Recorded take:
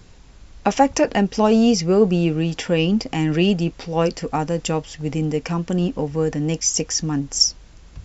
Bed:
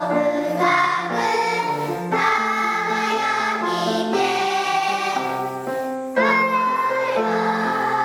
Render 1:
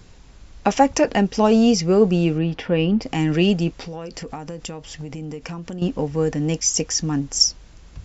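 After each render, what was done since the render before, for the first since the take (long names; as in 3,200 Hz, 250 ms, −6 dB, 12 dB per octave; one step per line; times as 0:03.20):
0:02.38–0:03.02: high-frequency loss of the air 250 metres
0:03.71–0:05.82: downward compressor 16 to 1, threshold −27 dBFS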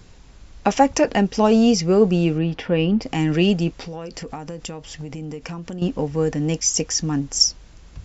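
no processing that can be heard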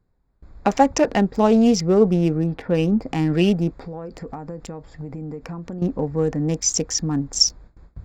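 adaptive Wiener filter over 15 samples
noise gate with hold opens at −36 dBFS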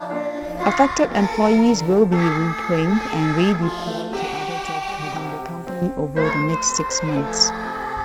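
mix in bed −6 dB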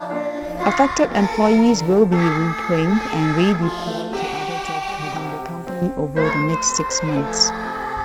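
level +1 dB
brickwall limiter −3 dBFS, peak gain reduction 1.5 dB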